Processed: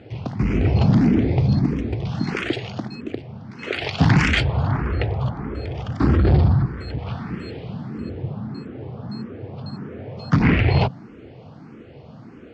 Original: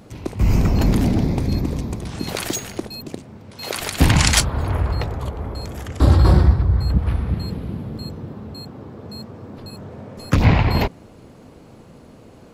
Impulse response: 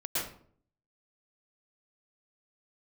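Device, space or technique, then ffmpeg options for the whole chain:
barber-pole phaser into a guitar amplifier: -filter_complex "[0:a]asplit=2[a][b];[b]afreqshift=1.6[c];[a][c]amix=inputs=2:normalize=1,asoftclip=type=tanh:threshold=-14dB,highpass=83,equalizer=f=130:t=q:w=4:g=5,equalizer=f=570:t=q:w=4:g=-4,equalizer=f=1k:t=q:w=4:g=-5,equalizer=f=3.9k:t=q:w=4:g=-7,lowpass=f=4.3k:w=0.5412,lowpass=f=4.3k:w=1.3066,asettb=1/sr,asplit=3[d][e][f];[d]atrim=end=6.664[g];[e]atrim=start=6.66:end=7.98,asetpts=PTS-STARTPTS,afade=t=in:d=0.004:c=qsin,afade=t=out:st=1.316:d=0.004:c=qsin,aemphasis=mode=production:type=bsi[h];[f]atrim=start=7.976[i];[g][h]acrossfade=d=0.004:c1=hsin:c2=qsin[j];[j][i]acrossfade=d=0.004:c1=qsin:c2=hsin,volume=6dB"

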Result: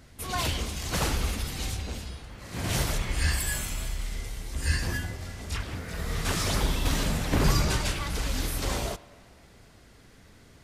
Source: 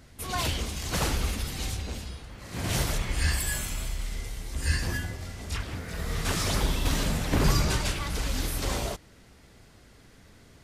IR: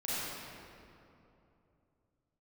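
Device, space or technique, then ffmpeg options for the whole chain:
filtered reverb send: -filter_complex "[0:a]asplit=2[a][b];[b]highpass=500,lowpass=3.6k[c];[1:a]atrim=start_sample=2205[d];[c][d]afir=irnorm=-1:irlink=0,volume=-22.5dB[e];[a][e]amix=inputs=2:normalize=0"

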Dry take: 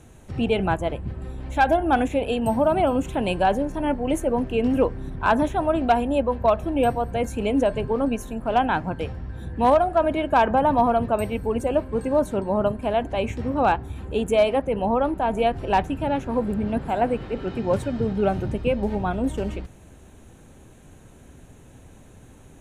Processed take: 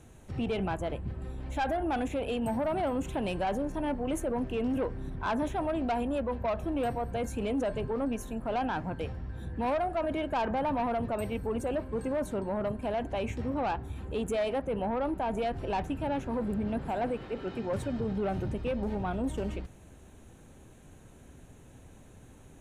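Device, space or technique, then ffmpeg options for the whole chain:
soft clipper into limiter: -filter_complex "[0:a]asettb=1/sr,asplit=3[a][b][c];[a]atrim=end=17.114[d];[b]atrim=start=17.11:end=17.73,asetpts=PTS-STARTPTS,afade=t=in:d=0.004:c=qsin,afade=t=out:st=0.616:d=0.004:c=qsin,lowshelf=f=170:g=-7.5[e];[c]atrim=start=17.726[f];[d][e]acrossfade=d=0.004:c1=hsin:c2=qsin[g];[g][f]acrossfade=d=0.004:c1=qsin:c2=hsin,asoftclip=type=tanh:threshold=-16dB,alimiter=limit=-20dB:level=0:latency=1:release=26,volume=-5dB"

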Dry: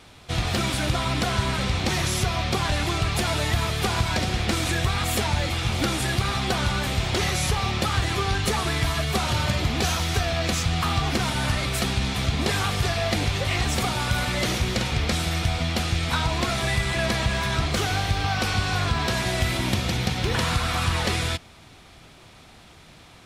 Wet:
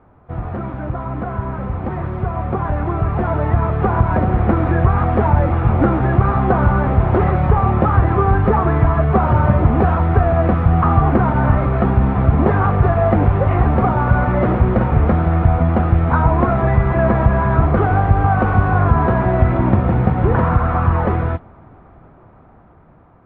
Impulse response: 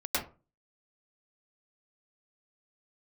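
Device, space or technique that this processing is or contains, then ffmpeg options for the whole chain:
action camera in a waterproof case: -af "lowpass=f=1.3k:w=0.5412,lowpass=f=1.3k:w=1.3066,dynaudnorm=f=920:g=7:m=12.5dB,volume=1dB" -ar 24000 -c:a aac -b:a 48k

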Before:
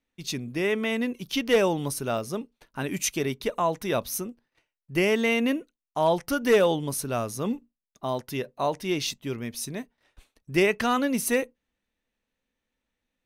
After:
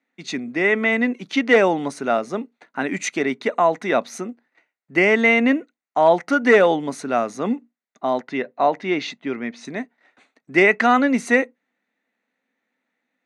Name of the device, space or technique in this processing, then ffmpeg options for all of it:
television speaker: -filter_complex "[0:a]asettb=1/sr,asplit=3[a][b][c];[a]atrim=end=8.204[d];[b]atrim=start=8.2:end=9.65,asetpts=PTS-STARTPTS,afade=t=in:d=0.004:c=qsin,afade=t=out:st=1.446:d=0.004:c=qsin,lowpass=4.4k[e];[c]atrim=start=9.646[f];[d][e]acrossfade=d=0.004:c1=hsin:c2=qsin[g];[g][f]acrossfade=d=0.004:c1=qsin:c2=hsin,highpass=f=190:w=0.5412,highpass=f=190:w=1.3066,equalizer=f=260:t=q:w=4:g=4,equalizer=f=730:t=q:w=4:g=7,equalizer=f=1.4k:t=q:w=4:g=5,equalizer=f=2k:t=q:w=4:g=9,equalizer=f=3.1k:t=q:w=4:g=-6,equalizer=f=5.3k:t=q:w=4:g=-10,lowpass=f=6.7k:w=0.5412,lowpass=f=6.7k:w=1.3066,volume=4.5dB"

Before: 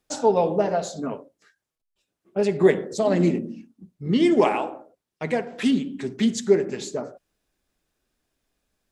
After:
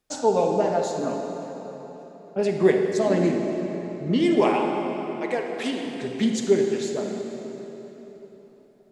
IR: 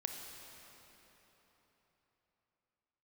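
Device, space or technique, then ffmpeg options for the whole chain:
cathedral: -filter_complex "[0:a]asettb=1/sr,asplit=3[a][b][c];[a]atrim=end=4.414[d];[b]atrim=start=4.41:end=5.86,asetpts=PTS-STARTPTS,afade=t=in:d=0.004:c=qsin,afade=t=out:st=1.446:d=0.004:c=qsin,highpass=f=300:w=0.5412,highpass=f=300:w=1.3066[e];[c]atrim=start=5.856[f];[d][e]acrossfade=d=0.004:c1=hsin:c2=qsin[g];[g][f]acrossfade=d=0.004:c1=qsin:c2=hsin[h];[1:a]atrim=start_sample=2205[i];[h][i]afir=irnorm=-1:irlink=0"

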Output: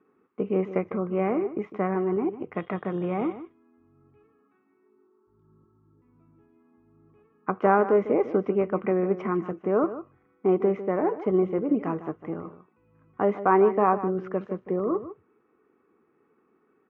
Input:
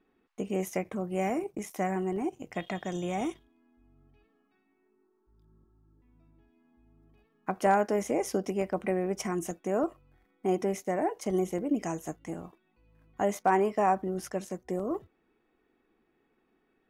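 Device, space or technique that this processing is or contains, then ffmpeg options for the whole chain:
bass cabinet: -filter_complex "[0:a]highpass=f=84:w=0.5412,highpass=f=84:w=1.3066,equalizer=f=430:t=q:w=4:g=6,equalizer=f=700:t=q:w=4:g=-6,equalizer=f=1.2k:t=q:w=4:g=9,equalizer=f=1.8k:t=q:w=4:g=-5,lowpass=f=2.2k:w=0.5412,lowpass=f=2.2k:w=1.3066,asplit=2[a][b];[b]adelay=151.6,volume=-13dB,highshelf=f=4k:g=-3.41[c];[a][c]amix=inputs=2:normalize=0,volume=4dB"

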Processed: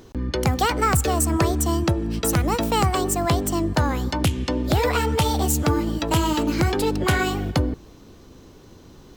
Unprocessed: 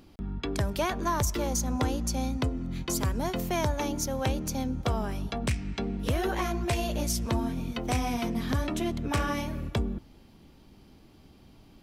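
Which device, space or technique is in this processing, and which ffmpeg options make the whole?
nightcore: -af "asetrate=56889,aresample=44100,volume=8dB"

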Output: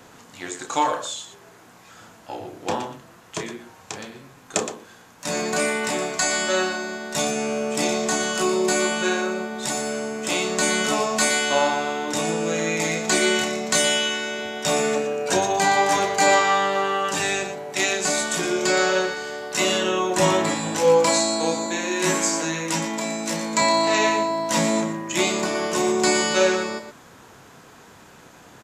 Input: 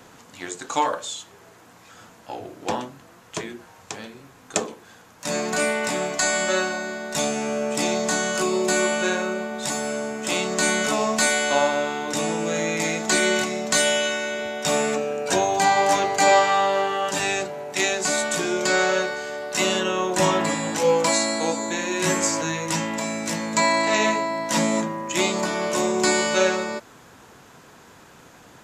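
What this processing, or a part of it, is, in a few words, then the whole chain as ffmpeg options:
slapback doubling: -filter_complex "[0:a]asplit=3[a][b][c];[b]adelay=30,volume=-8.5dB[d];[c]adelay=118,volume=-10dB[e];[a][d][e]amix=inputs=3:normalize=0,asettb=1/sr,asplit=3[f][g][h];[f]atrim=end=21.664[i];[g]atrim=start=21.66:end=23.62,asetpts=PTS-STARTPTS,afade=t=in:d=0.004:c=qsin,afade=t=out:st=1.956:d=0.004:c=qsin,highpass=f=170:w=0.5412,highpass=f=170:w=1.3066[j];[h]atrim=start=23.616[k];[i][j]acrossfade=d=0.004:c1=hsin:c2=qsin[l];[l][k]acrossfade=d=0.004:c1=qsin:c2=hsin"

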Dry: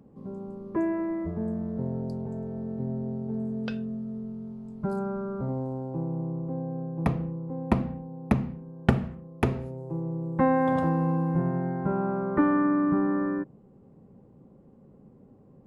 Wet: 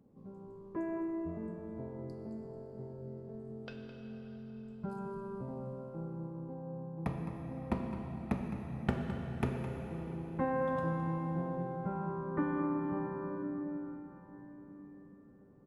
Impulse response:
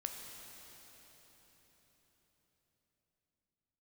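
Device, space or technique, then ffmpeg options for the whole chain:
cave: -filter_complex "[0:a]aecho=1:1:212:0.251[a];[1:a]atrim=start_sample=2205[b];[a][b]afir=irnorm=-1:irlink=0,volume=-8dB"

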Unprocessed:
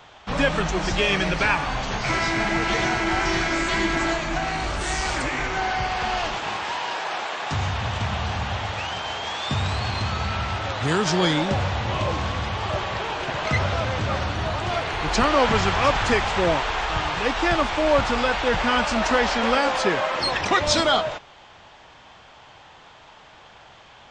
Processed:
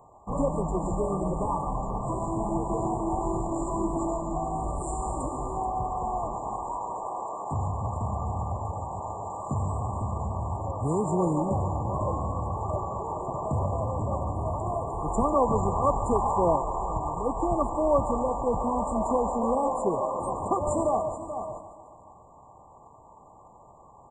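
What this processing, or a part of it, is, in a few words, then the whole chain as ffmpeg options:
ducked delay: -filter_complex "[0:a]asettb=1/sr,asplit=3[a][b][c];[a]atrim=end=16.144[d];[b]atrim=start=16.14:end=16.56,asetpts=PTS-STARTPTS,afade=t=in:d=0.004:c=qsin,afade=t=out:st=0.416:d=0.004:c=qsin,equalizer=f=960:t=o:w=0.77:g=6[e];[c]atrim=start=16.556[f];[d][e]acrossfade=d=0.004:c1=hsin:c2=qsin[g];[g][f]acrossfade=d=0.004:c1=qsin:c2=hsin,afftfilt=real='re*(1-between(b*sr/4096,1200,7000))':imag='im*(1-between(b*sr/4096,1200,7000))':win_size=4096:overlap=0.75,aecho=1:1:144|288|432|576|720|864:0.178|0.103|0.0598|0.0347|0.0201|0.0117,asplit=3[h][i][j];[i]adelay=431,volume=-4dB[k];[j]apad=whole_len=1120258[l];[k][l]sidechaincompress=threshold=-33dB:ratio=8:attack=22:release=502[m];[h][m]amix=inputs=2:normalize=0,volume=-3.5dB"

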